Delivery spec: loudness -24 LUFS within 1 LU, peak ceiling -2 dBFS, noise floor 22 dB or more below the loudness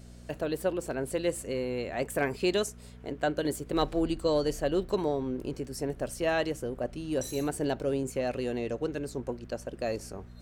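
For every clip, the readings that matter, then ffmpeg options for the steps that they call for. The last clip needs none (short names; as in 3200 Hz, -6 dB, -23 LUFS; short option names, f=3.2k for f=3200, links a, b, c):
hum 60 Hz; harmonics up to 240 Hz; hum level -46 dBFS; loudness -31.5 LUFS; peak -15.0 dBFS; loudness target -24.0 LUFS
-> -af "bandreject=f=60:t=h:w=4,bandreject=f=120:t=h:w=4,bandreject=f=180:t=h:w=4,bandreject=f=240:t=h:w=4"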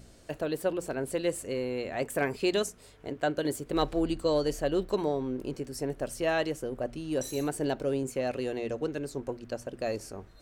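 hum none; loudness -31.5 LUFS; peak -15.0 dBFS; loudness target -24.0 LUFS
-> -af "volume=7.5dB"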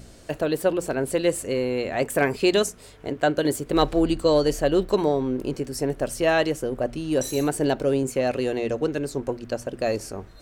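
loudness -24.0 LUFS; peak -7.5 dBFS; noise floor -47 dBFS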